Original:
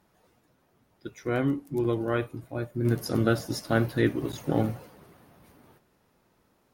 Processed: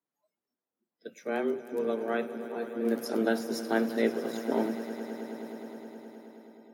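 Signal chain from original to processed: frequency shift +110 Hz; echo with a slow build-up 105 ms, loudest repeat 5, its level -17.5 dB; spectral noise reduction 23 dB; trim -4 dB

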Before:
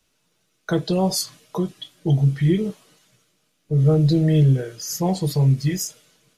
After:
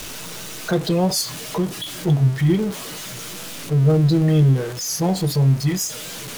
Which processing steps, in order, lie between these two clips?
jump at every zero crossing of -27 dBFS; warped record 45 rpm, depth 100 cents

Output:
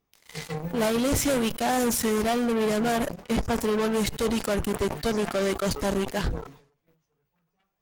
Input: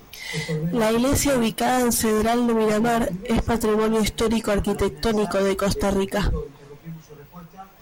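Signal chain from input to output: Chebyshev shaper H 3 -12 dB, 7 -28 dB, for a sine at -12.5 dBFS; decay stretcher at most 110 dB/s

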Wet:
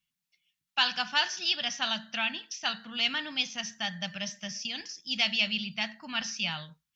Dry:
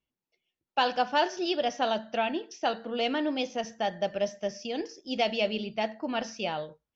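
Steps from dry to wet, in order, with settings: FFT filter 100 Hz 0 dB, 170 Hz +11 dB, 420 Hz -19 dB, 1.1 kHz +5 dB, 1.7 kHz +10 dB, 3.6 kHz +14 dB; trim -6.5 dB

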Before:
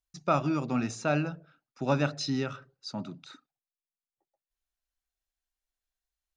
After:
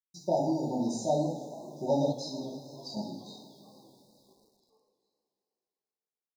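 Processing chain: high-pass 150 Hz 6 dB/octave; two-slope reverb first 0.58 s, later 3.9 s, from -21 dB, DRR -6 dB; 2.12–2.97 s: compression 2:1, threshold -36 dBFS, peak gain reduction 8.5 dB; bit crusher 10-bit; FFT band-reject 940–3700 Hz; frequency-shifting echo 439 ms, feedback 60%, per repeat +58 Hz, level -22.5 dB; modulated delay 160 ms, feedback 64%, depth 188 cents, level -17 dB; trim -5.5 dB

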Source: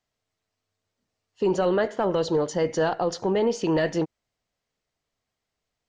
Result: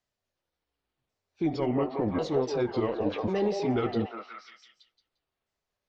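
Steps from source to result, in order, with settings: sawtooth pitch modulation -11 st, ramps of 1093 ms; repeats whose band climbs or falls 175 ms, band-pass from 610 Hz, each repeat 0.7 oct, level 0 dB; trim -3.5 dB

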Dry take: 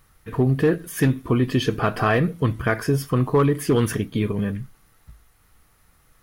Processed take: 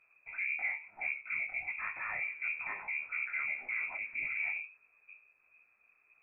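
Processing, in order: 2.17–4.57 s: jump at every zero crossing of -38 dBFS; peak limiter -17 dBFS, peak gain reduction 7 dB; distance through air 440 m; frequency inversion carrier 2.5 kHz; detune thickener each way 56 cents; trim -8 dB

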